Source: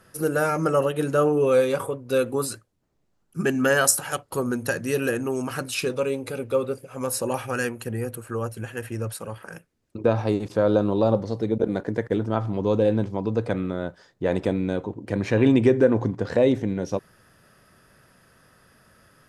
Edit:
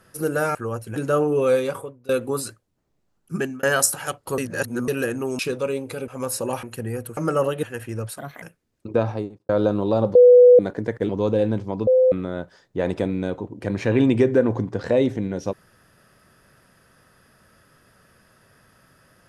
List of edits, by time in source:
0:00.55–0:01.01: swap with 0:08.25–0:08.66
0:01.64–0:02.14: fade out linear, to −22.5 dB
0:03.41–0:03.68: fade out
0:04.43–0:04.93: reverse
0:05.44–0:05.76: remove
0:06.45–0:06.89: remove
0:07.44–0:07.71: remove
0:09.21–0:09.52: play speed 129%
0:10.07–0:10.59: fade out and dull
0:11.25–0:11.69: beep over 493 Hz −6.5 dBFS
0:12.19–0:12.55: remove
0:13.33–0:13.58: beep over 513 Hz −12 dBFS

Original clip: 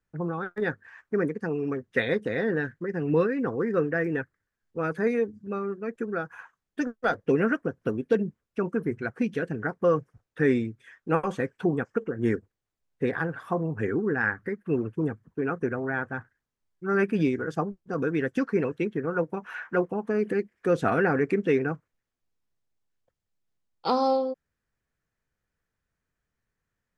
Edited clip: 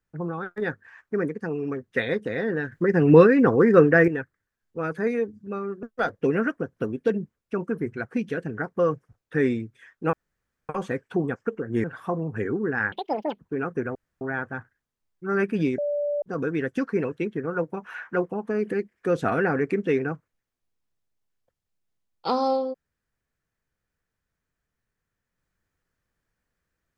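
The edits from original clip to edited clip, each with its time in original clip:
0:02.72–0:04.08: clip gain +10 dB
0:05.83–0:06.88: remove
0:11.18: splice in room tone 0.56 s
0:12.33–0:13.27: remove
0:14.35–0:15.25: play speed 191%
0:15.81: splice in room tone 0.26 s
0:17.38–0:17.82: beep over 583 Hz −23 dBFS

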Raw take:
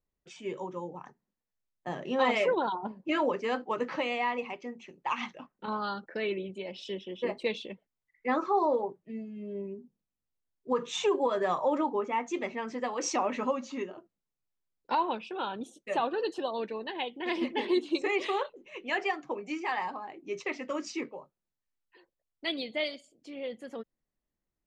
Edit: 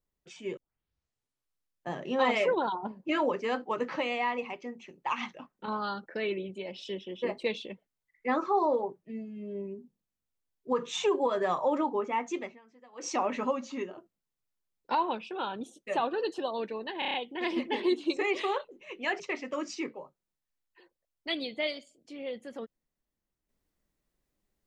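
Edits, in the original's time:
0:00.57: tape start 1.34 s
0:12.32–0:13.19: duck −23 dB, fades 0.27 s
0:16.99: stutter 0.03 s, 6 plays
0:19.05–0:20.37: remove

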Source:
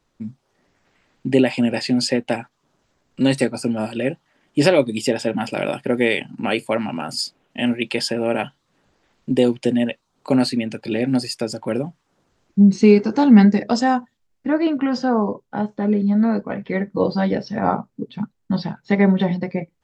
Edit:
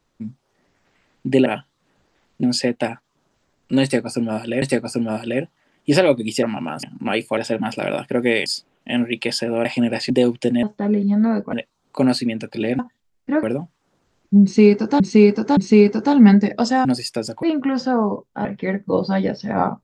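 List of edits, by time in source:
0:01.46–0:01.91: swap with 0:08.34–0:09.31
0:03.31–0:04.10: repeat, 2 plays
0:05.12–0:06.21: swap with 0:06.75–0:07.15
0:11.10–0:11.68: swap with 0:13.96–0:14.60
0:12.68–0:13.25: repeat, 3 plays
0:15.62–0:16.52: move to 0:09.84

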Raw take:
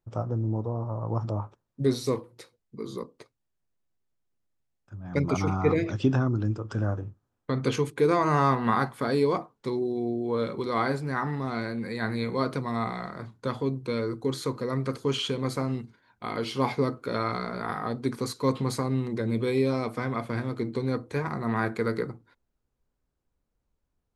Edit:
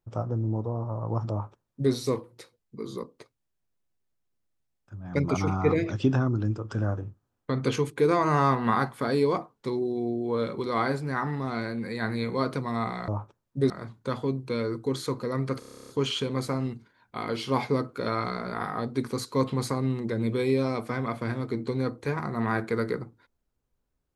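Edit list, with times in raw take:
0:01.31–0:01.93: duplicate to 0:13.08
0:14.97: stutter 0.03 s, 11 plays

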